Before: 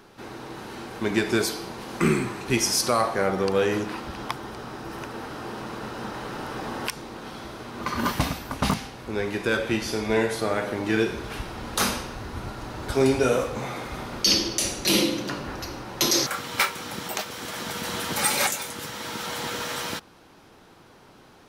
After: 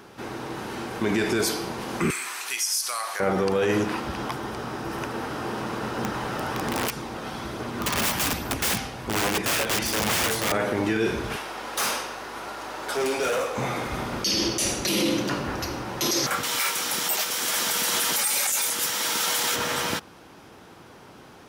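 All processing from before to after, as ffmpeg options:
-filter_complex "[0:a]asettb=1/sr,asplit=3[s0][s1][s2];[s0]atrim=end=2.104[s3];[s1]atrim=start=2.1:end=3.2,asetpts=PTS-STARTPTS,afade=t=in:d=0.004:c=qsin,afade=t=out:st=1.096:d=0.004:c=qsin,highpass=1200,highshelf=f=4600:g=12,acompressor=threshold=0.0224:ratio=2.5:attack=3.2:release=140:knee=1:detection=peak[s4];[s2]atrim=start=3.196[s5];[s3][s4]acrossfade=d=0.004:c1=hsin:c2=qsin[s6];[s6][s5]acrossfade=d=0.004:c1=qsin:c2=hsin,asettb=1/sr,asplit=3[s7][s8][s9];[s7]atrim=end=5.974[s10];[s8]atrim=start=5.97:end=10.52,asetpts=PTS-STARTPTS,afade=t=in:d=0.004:c=qsin,afade=t=out:st=4.546:d=0.004:c=qsin,aphaser=in_gain=1:out_gain=1:delay=1.7:decay=0.25:speed=1.2:type=triangular,aeval=exprs='(mod(14.1*val(0)+1,2)-1)/14.1':c=same[s11];[s9]atrim=start=10.516[s12];[s10][s11]acrossfade=d=0.004:c1=hsin:c2=qsin[s13];[s13][s12]acrossfade=d=0.004:c1=qsin:c2=hsin,asettb=1/sr,asplit=3[s14][s15][s16];[s14]atrim=end=11.364[s17];[s15]atrim=start=11.36:end=13.58,asetpts=PTS-STARTPTS,afade=t=in:d=0.004:c=qsin,afade=t=out:st=2.216:d=0.004:c=qsin,highpass=480,aeval=exprs='val(0)+0.00141*(sin(2*PI*50*n/s)+sin(2*PI*2*50*n/s)/2+sin(2*PI*3*50*n/s)/3+sin(2*PI*4*50*n/s)/4+sin(2*PI*5*50*n/s)/5)':c=same,volume=22.4,asoftclip=hard,volume=0.0447[s18];[s16]atrim=start=13.576[s19];[s17][s18]acrossfade=d=0.004:c1=hsin:c2=qsin[s20];[s20][s19]acrossfade=d=0.004:c1=qsin:c2=hsin,asettb=1/sr,asplit=3[s21][s22][s23];[s21]atrim=end=16.434[s24];[s22]atrim=start=16.43:end=19.56,asetpts=PTS-STARTPTS,afade=t=in:d=0.004:c=qsin,afade=t=out:st=3.126:d=0.004:c=qsin,highpass=f=440:p=1,highshelf=f=3600:g=11.5[s25];[s23]atrim=start=19.556[s26];[s24][s25]acrossfade=d=0.004:c1=hsin:c2=qsin[s27];[s27][s26]acrossfade=d=0.004:c1=qsin:c2=hsin,highpass=50,equalizer=f=4100:t=o:w=0.28:g=-3.5,alimiter=limit=0.106:level=0:latency=1:release=14,volume=1.68"

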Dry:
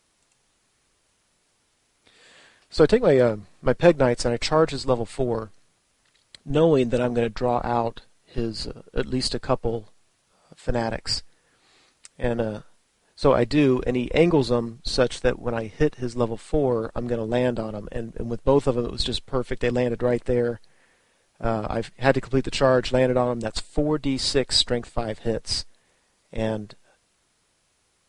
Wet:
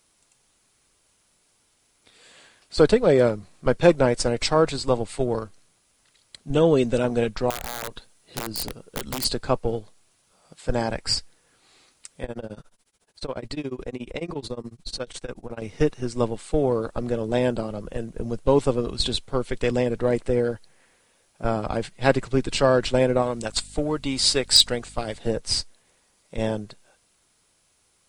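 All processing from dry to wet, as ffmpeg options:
-filter_complex "[0:a]asettb=1/sr,asplit=3[s0][s1][s2];[s0]atrim=end=7.504[s3];[s1]atrim=start=7.5:end=9.25,asetpts=PTS-STARTPTS,afade=t=in:d=0.004:c=qsin,afade=t=out:st=1.746:d=0.004:c=qsin,highshelf=f=7700:g=4,acompressor=threshold=0.0501:ratio=6:attack=3.2:release=140:knee=1:detection=peak,aeval=exprs='(mod(15*val(0)+1,2)-1)/15':c=same[s4];[s2]atrim=start=9.246[s5];[s3][s4]acrossfade=d=0.004:c1=hsin:c2=qsin[s6];[s6][s5]acrossfade=d=0.004:c1=qsin:c2=hsin,asettb=1/sr,asplit=3[s7][s8][s9];[s7]atrim=end=12.244[s10];[s8]atrim=start=12.24:end=15.62,asetpts=PTS-STARTPTS,afade=t=in:d=0.004:c=qsin,afade=t=out:st=3.376:d=0.004:c=qsin,tremolo=f=14:d=0.96,acompressor=threshold=0.0316:ratio=2.5:attack=3.2:release=140:knee=1:detection=peak[s11];[s9]atrim=start=15.616[s12];[s10][s11]acrossfade=d=0.004:c1=hsin:c2=qsin[s13];[s13][s12]acrossfade=d=0.004:c1=qsin:c2=hsin,asettb=1/sr,asplit=3[s14][s15][s16];[s14]atrim=end=23.224[s17];[s15]atrim=start=23.22:end=25.18,asetpts=PTS-STARTPTS,afade=t=in:d=0.004:c=qsin,afade=t=out:st=1.956:d=0.004:c=qsin,tiltshelf=f=1100:g=-3.5,aeval=exprs='val(0)+0.00447*(sin(2*PI*50*n/s)+sin(2*PI*2*50*n/s)/2+sin(2*PI*3*50*n/s)/3+sin(2*PI*4*50*n/s)/4+sin(2*PI*5*50*n/s)/5)':c=same,volume=2.11,asoftclip=hard,volume=0.473[s18];[s16]atrim=start=25.176[s19];[s17][s18]acrossfade=d=0.004:c1=hsin:c2=qsin[s20];[s20][s19]acrossfade=d=0.004:c1=qsin:c2=hsin,highshelf=f=8200:g=8.5,bandreject=f=1800:w=20"

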